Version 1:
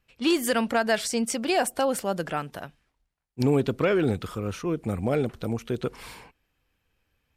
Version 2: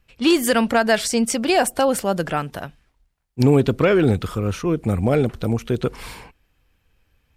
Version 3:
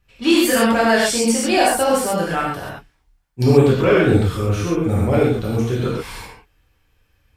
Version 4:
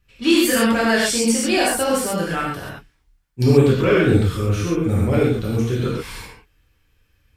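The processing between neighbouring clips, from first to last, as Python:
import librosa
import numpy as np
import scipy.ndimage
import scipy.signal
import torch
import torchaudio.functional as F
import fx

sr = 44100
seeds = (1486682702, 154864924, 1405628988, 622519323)

y1 = fx.low_shelf(x, sr, hz=94.0, db=8.0)
y1 = F.gain(torch.from_numpy(y1), 6.0).numpy()
y2 = fx.rev_gated(y1, sr, seeds[0], gate_ms=160, shape='flat', drr_db=-7.0)
y2 = F.gain(torch.from_numpy(y2), -4.5).numpy()
y3 = fx.peak_eq(y2, sr, hz=760.0, db=-6.5, octaves=0.98)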